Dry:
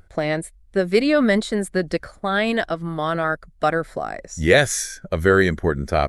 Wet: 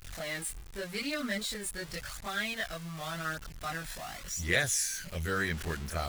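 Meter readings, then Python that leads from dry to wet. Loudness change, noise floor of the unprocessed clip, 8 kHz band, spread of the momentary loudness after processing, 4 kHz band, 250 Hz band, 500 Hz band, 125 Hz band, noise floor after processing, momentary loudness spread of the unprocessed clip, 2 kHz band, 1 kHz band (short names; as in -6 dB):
-13.0 dB, -51 dBFS, -4.0 dB, 11 LU, -7.5 dB, -18.0 dB, -20.0 dB, -13.0 dB, -47 dBFS, 10 LU, -10.5 dB, -15.0 dB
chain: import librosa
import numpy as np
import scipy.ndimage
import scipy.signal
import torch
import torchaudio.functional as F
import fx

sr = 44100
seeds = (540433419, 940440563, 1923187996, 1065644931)

y = x + 0.5 * 10.0 ** (-25.0 / 20.0) * np.sign(x)
y = fx.chorus_voices(y, sr, voices=2, hz=0.44, base_ms=24, depth_ms=1.3, mix_pct=60)
y = fx.tone_stack(y, sr, knobs='5-5-5')
y = F.gain(torch.from_numpy(y), 1.0).numpy()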